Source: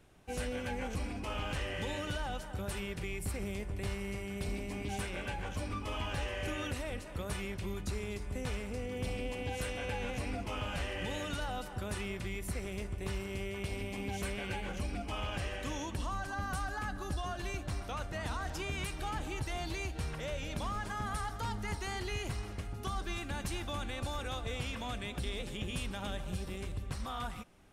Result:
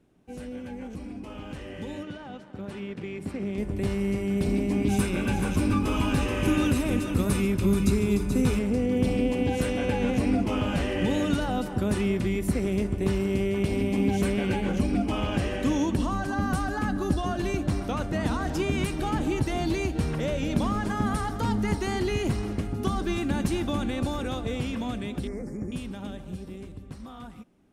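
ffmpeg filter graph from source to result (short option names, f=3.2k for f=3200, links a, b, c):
-filter_complex "[0:a]asettb=1/sr,asplit=3[a][b][c];[a]atrim=end=2.034[d];[b]atrim=start=2.03:end=3.58,asetpts=PTS-STARTPTS,afade=t=in:d=0.004:c=qsin,afade=t=out:st=1.546:d=0.004:c=qsin,aemphasis=mode=production:type=75fm,aeval=exprs='sgn(val(0))*max(abs(val(0))-0.00376,0)':c=same,highpass=110,lowpass=2.6k[e];[c]atrim=start=3.576[f];[d][e]acrossfade=d=0.004:c1=hsin:c2=qsin[g];[g][f]acrossfade=d=0.004:c1=qsin:c2=hsin,asettb=1/sr,asplit=3[h][i][j];[h]atrim=end=4.874[k];[i]atrim=start=4.87:end=8.59,asetpts=PTS-STARTPTS,afade=t=in:d=0.004:c=qsin,afade=t=out:st=3.716:d=0.004:c=qsin,highshelf=f=8k:g=9.5,aecho=1:1:0.8:0.34,atrim=end_sample=164052,aecho=1:1:431:0.422,atrim=end_sample=164052[l];[j]atrim=start=8.586[m];[k][l]acrossfade=d=0.004:c1=hsin:c2=qsin[n];[n][m]acrossfade=d=0.004:c1=qsin:c2=hsin,asettb=1/sr,asplit=3[o][p][q];[o]atrim=end=25.274[r];[p]atrim=start=25.27:end=25.72,asetpts=PTS-STARTPTS,afade=t=in:d=0.004:c=qsin,afade=t=out:st=0.446:d=0.004:c=qsin,asuperstop=centerf=3200:order=8:qfactor=1.1,highshelf=f=9k:g=-7.5[s];[q]atrim=start=25.716[t];[r][s]acrossfade=d=0.004:c1=hsin:c2=qsin[u];[u][t]acrossfade=d=0.004:c1=qsin:c2=hsin,dynaudnorm=f=210:g=31:m=14dB,equalizer=f=250:t=o:w=1.9:g=14,volume=-9dB"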